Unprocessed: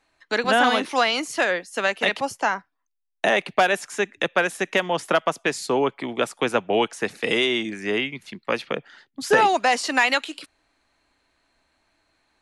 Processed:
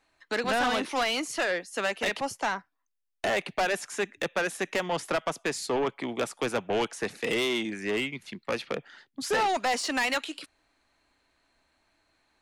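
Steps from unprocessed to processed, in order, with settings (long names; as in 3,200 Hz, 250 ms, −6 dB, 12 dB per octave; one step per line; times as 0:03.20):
soft clipping −19.5 dBFS, distortion −10 dB
level −2.5 dB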